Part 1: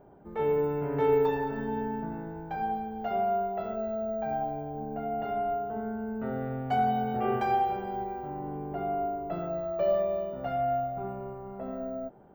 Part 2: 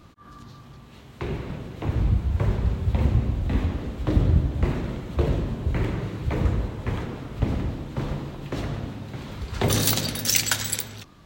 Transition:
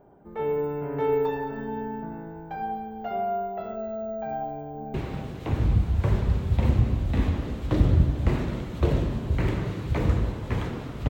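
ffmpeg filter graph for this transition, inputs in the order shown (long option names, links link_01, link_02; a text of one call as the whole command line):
ffmpeg -i cue0.wav -i cue1.wav -filter_complex "[0:a]apad=whole_dur=11.09,atrim=end=11.09,atrim=end=4.942[link_01];[1:a]atrim=start=1.298:end=7.45[link_02];[link_01][link_02]acrossfade=duration=0.004:curve1=hsin:curve2=hsin,asplit=2[link_03][link_04];[link_04]afade=type=in:start_time=4.51:duration=0.01,afade=type=out:start_time=4.94:duration=0.01,aecho=0:1:340|680|1020|1360|1700|2040|2380|2720:0.398107|0.238864|0.143319|0.0859911|0.0515947|0.0309568|0.0185741|0.0111445[link_05];[link_03][link_05]amix=inputs=2:normalize=0" out.wav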